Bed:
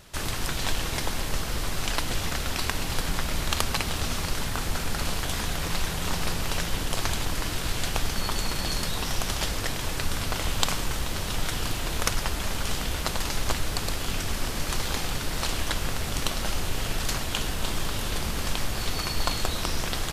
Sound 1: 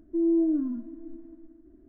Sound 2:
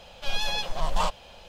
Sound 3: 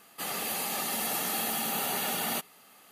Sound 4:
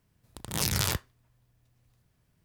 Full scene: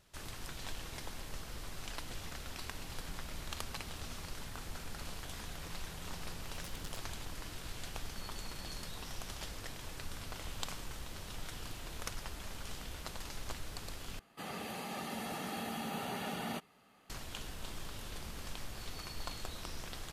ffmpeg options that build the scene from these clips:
-filter_complex "[0:a]volume=-16dB[a];[4:a]aeval=exprs='val(0)*pow(10,-25*if(lt(mod(10*n/s,1),2*abs(10)/1000),1-mod(10*n/s,1)/(2*abs(10)/1000),(mod(10*n/s,1)-2*abs(10)/1000)/(1-2*abs(10)/1000))/20)':c=same[b];[3:a]aemphasis=mode=reproduction:type=bsi[c];[a]asplit=2[d][e];[d]atrim=end=14.194[f];[c]atrim=end=2.91,asetpts=PTS-STARTPTS,volume=-7dB[g];[e]atrim=start=17.096[h];[b]atrim=end=2.44,asetpts=PTS-STARTPTS,volume=-17dB,afade=t=in:d=0.004:c=hsin,afade=t=out:st=2.436:d=0.004:c=hsin,adelay=6040[i];[f][g]acrossfade=d=0.004:c1=hsin:c2=hsin[j];[j][h]acrossfade=d=0.004:c1=hsin:c2=hsin[k];[k][i]amix=inputs=2:normalize=0"

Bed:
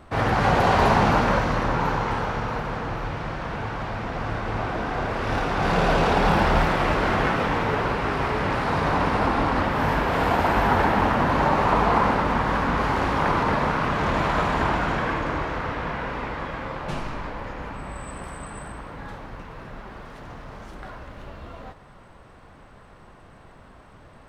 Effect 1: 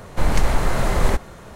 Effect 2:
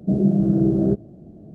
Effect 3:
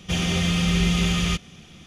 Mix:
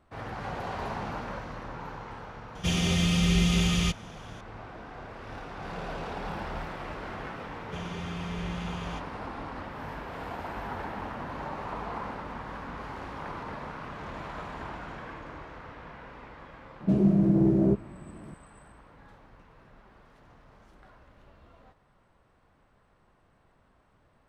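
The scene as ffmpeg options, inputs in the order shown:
-filter_complex "[3:a]asplit=2[a][b];[0:a]volume=-16.5dB[c];[a]equalizer=f=1.5k:t=o:w=1.6:g=-3[d];[b]highshelf=f=3.7k:g=-10.5[e];[2:a]asoftclip=type=tanh:threshold=-9dB[f];[d]atrim=end=1.86,asetpts=PTS-STARTPTS,volume=-2.5dB,afade=t=in:d=0.004:c=hsin,afade=t=out:st=1.856:d=0.004:c=hsin,adelay=2550[g];[e]atrim=end=1.86,asetpts=PTS-STARTPTS,volume=-14.5dB,afade=t=in:d=0.004:c=hsin,afade=t=out:st=1.856:d=0.004:c=hsin,adelay=7630[h];[f]atrim=end=1.54,asetpts=PTS-STARTPTS,volume=-3dB,afade=t=in:d=0.004:c=hsin,afade=t=out:st=1.536:d=0.004:c=hsin,adelay=16800[i];[c][g][h][i]amix=inputs=4:normalize=0"

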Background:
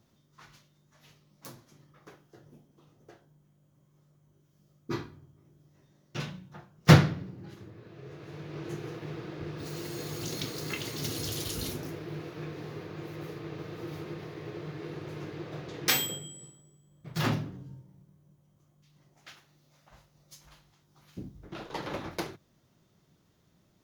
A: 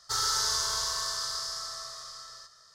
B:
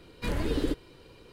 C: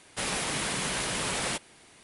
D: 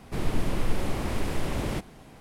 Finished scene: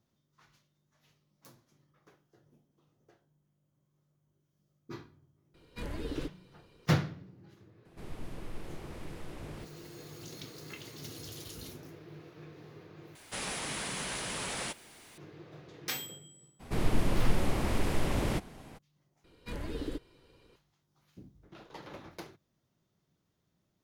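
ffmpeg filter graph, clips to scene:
-filter_complex "[2:a]asplit=2[a][b];[4:a]asplit=2[c][d];[0:a]volume=-10.5dB[e];[3:a]aeval=exprs='val(0)+0.5*0.00501*sgn(val(0))':c=same[f];[e]asplit=3[g][h][i];[g]atrim=end=13.154[j];[f]atrim=end=2.03,asetpts=PTS-STARTPTS,volume=-7dB[k];[h]atrim=start=15.176:end=19.244[l];[b]atrim=end=1.32,asetpts=PTS-STARTPTS,volume=-9dB[m];[i]atrim=start=20.556[n];[a]atrim=end=1.32,asetpts=PTS-STARTPTS,volume=-9dB,afade=t=in:d=0.004:c=hsin,afade=t=out:st=1.316:d=0.004:c=hsin,adelay=5540[o];[c]atrim=end=2.2,asetpts=PTS-STARTPTS,volume=-16dB,afade=t=in:d=0.004:c=hsin,afade=t=out:st=2.196:d=0.004:c=hsin,adelay=7850[p];[d]atrim=end=2.2,asetpts=PTS-STARTPTS,volume=-1dB,afade=t=in:d=0.02,afade=t=out:st=2.18:d=0.02,adelay=16590[q];[j][k]acrossfade=d=0.004:c1=hsin:c2=hsin[r];[r][l]acrossfade=d=0.004:c1=hsin:c2=hsin[s];[s][m]acrossfade=d=0.004:c1=hsin:c2=hsin[t];[t][n]acrossfade=d=0.004:c1=hsin:c2=hsin[u];[u][o][p][q]amix=inputs=4:normalize=0"

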